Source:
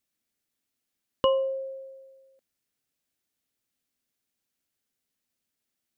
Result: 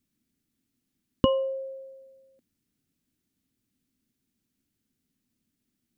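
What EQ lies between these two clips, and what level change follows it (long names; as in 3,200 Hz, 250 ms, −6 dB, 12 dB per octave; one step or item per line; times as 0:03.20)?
low shelf with overshoot 390 Hz +13.5 dB, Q 1.5
0.0 dB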